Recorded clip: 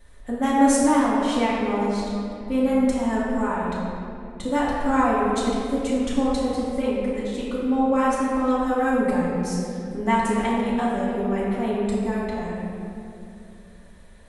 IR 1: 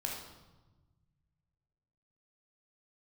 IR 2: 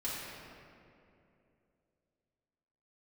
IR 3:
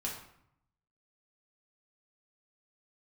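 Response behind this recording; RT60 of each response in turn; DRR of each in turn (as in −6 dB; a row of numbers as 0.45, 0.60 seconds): 2; 1.2, 2.7, 0.70 seconds; −1.5, −9.0, −3.5 decibels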